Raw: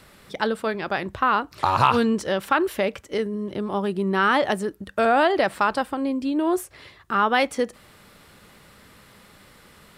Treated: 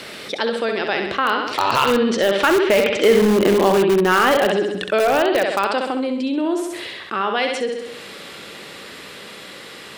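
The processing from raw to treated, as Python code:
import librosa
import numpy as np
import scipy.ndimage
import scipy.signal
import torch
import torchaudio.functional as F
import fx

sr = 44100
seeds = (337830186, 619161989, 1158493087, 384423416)

p1 = fx.doppler_pass(x, sr, speed_mps=11, closest_m=2.4, pass_at_s=3.29)
p2 = fx.peak_eq(p1, sr, hz=440.0, db=10.0, octaves=2.2)
p3 = fx.room_flutter(p2, sr, wall_m=11.3, rt60_s=0.57)
p4 = fx.env_lowpass_down(p3, sr, base_hz=2800.0, full_db=-23.0)
p5 = fx.weighting(p4, sr, curve='D')
p6 = (np.mod(10.0 ** (21.0 / 20.0) * p5 + 1.0, 2.0) - 1.0) / 10.0 ** (21.0 / 20.0)
p7 = p5 + (p6 * librosa.db_to_amplitude(-10.0))
p8 = fx.env_flatten(p7, sr, amount_pct=50)
y = p8 * librosa.db_to_amplitude(4.5)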